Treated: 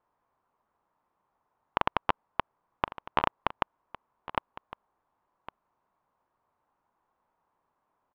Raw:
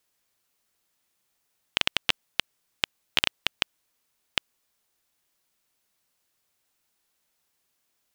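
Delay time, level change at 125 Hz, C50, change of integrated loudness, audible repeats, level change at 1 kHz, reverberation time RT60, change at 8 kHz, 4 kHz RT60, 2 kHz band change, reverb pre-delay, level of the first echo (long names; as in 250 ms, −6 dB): 1,108 ms, +3.0 dB, no reverb audible, −4.5 dB, 1, +10.5 dB, no reverb audible, below −30 dB, no reverb audible, −7.0 dB, no reverb audible, −16.0 dB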